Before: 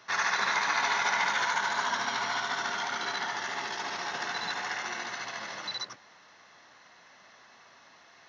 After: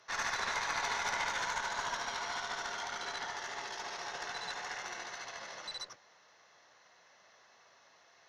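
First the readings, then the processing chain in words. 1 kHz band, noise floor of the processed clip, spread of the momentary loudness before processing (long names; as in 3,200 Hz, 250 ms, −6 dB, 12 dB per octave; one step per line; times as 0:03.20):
−7.5 dB, −64 dBFS, 10 LU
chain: graphic EQ with 10 bands 250 Hz −6 dB, 500 Hz +6 dB, 8,000 Hz +7 dB
harmonic generator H 4 −18 dB, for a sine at −12.5 dBFS
level −8.5 dB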